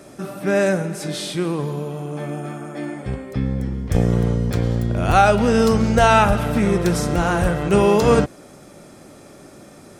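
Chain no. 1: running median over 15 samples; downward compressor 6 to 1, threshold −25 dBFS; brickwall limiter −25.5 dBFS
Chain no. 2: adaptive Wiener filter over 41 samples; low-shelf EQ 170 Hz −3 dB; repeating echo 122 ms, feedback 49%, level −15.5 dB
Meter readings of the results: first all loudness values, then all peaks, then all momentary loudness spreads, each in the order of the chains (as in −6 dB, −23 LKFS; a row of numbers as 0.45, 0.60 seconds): −34.0, −20.5 LKFS; −25.5, −2.5 dBFS; 12, 16 LU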